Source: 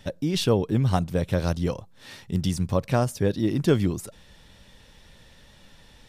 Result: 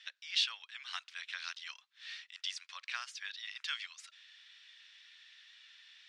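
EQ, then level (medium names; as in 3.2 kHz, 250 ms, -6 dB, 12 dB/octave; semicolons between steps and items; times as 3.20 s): Bessel high-pass 2.6 kHz, order 6; low-pass 4 kHz 12 dB/octave; distance through air 63 m; +5.0 dB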